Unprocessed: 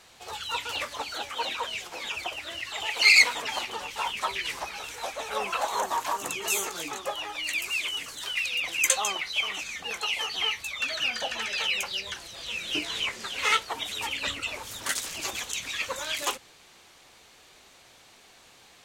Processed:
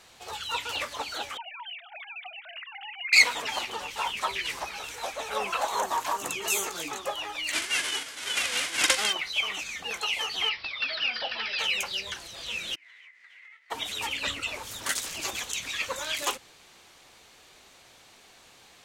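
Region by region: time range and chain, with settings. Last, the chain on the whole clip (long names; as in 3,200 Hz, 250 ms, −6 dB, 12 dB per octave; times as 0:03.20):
0:01.37–0:03.13: three sine waves on the formant tracks + spectral tilt +2 dB per octave + downward compressor 3 to 1, threshold −40 dBFS
0:07.51–0:09.12: spectral envelope flattened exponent 0.1 + loudspeaker in its box 110–9,500 Hz, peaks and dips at 120 Hz −10 dB, 180 Hz −7 dB, 1,500 Hz +6 dB, 2,100 Hz +7 dB, 3,100 Hz +6 dB + double-tracking delay 42 ms −12 dB
0:10.49–0:11.59: low-shelf EQ 470 Hz −7 dB + bad sample-rate conversion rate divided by 4×, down none, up filtered
0:12.74–0:13.70: spectral envelope flattened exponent 0.6 + resonant band-pass 2,000 Hz, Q 14 + downward compressor 10 to 1, threshold −48 dBFS
whole clip: no processing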